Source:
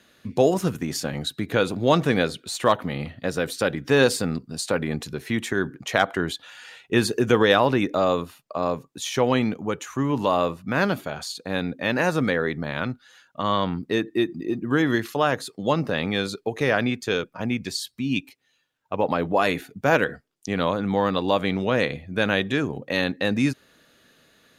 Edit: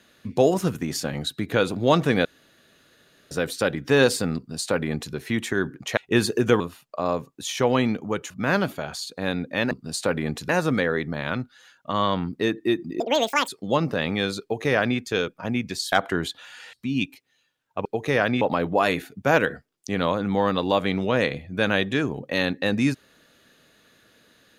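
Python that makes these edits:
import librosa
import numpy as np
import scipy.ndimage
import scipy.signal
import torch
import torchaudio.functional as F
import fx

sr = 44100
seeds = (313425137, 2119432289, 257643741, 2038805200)

y = fx.edit(x, sr, fx.room_tone_fill(start_s=2.25, length_s=1.06),
    fx.duplicate(start_s=4.36, length_s=0.78, to_s=11.99),
    fx.move(start_s=5.97, length_s=0.81, to_s=17.88),
    fx.cut(start_s=7.41, length_s=0.76),
    fx.cut(start_s=9.87, length_s=0.71),
    fx.speed_span(start_s=14.5, length_s=0.94, speed=1.95),
    fx.duplicate(start_s=16.38, length_s=0.56, to_s=19.0), tone=tone)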